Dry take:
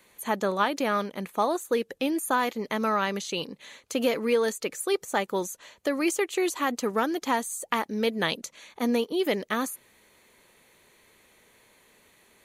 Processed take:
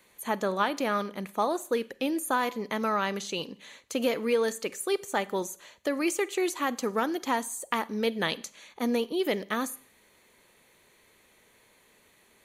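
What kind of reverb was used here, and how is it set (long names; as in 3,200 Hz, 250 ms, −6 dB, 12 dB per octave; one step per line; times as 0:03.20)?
four-comb reverb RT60 0.5 s, combs from 31 ms, DRR 18.5 dB
level −2 dB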